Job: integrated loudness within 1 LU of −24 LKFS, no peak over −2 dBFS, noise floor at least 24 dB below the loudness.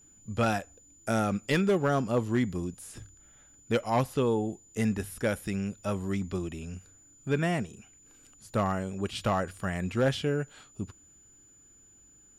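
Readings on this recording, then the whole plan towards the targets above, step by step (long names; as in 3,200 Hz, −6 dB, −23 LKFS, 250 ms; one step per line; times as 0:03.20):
share of clipped samples 0.3%; peaks flattened at −18.5 dBFS; interfering tone 7,000 Hz; level of the tone −56 dBFS; integrated loudness −30.0 LKFS; sample peak −18.5 dBFS; target loudness −24.0 LKFS
→ clipped peaks rebuilt −18.5 dBFS
notch filter 7,000 Hz, Q 30
level +6 dB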